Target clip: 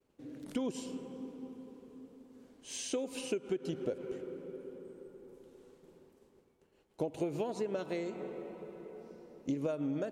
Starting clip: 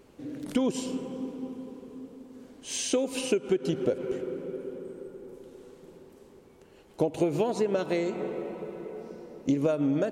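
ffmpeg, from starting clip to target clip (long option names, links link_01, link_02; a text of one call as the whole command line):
ffmpeg -i in.wav -af "agate=range=-33dB:threshold=-49dB:ratio=3:detection=peak,volume=-9dB" out.wav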